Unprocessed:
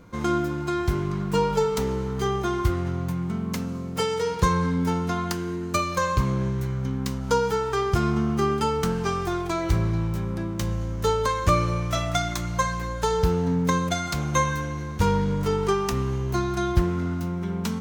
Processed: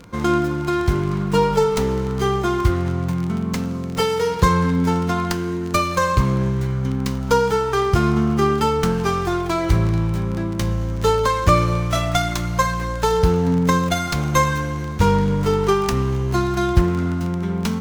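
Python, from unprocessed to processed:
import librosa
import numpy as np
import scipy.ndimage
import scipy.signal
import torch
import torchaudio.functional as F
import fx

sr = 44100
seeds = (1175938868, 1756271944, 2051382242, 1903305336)

y = fx.dmg_crackle(x, sr, seeds[0], per_s=34.0, level_db=-31.0)
y = fx.running_max(y, sr, window=3)
y = y * librosa.db_to_amplitude(5.5)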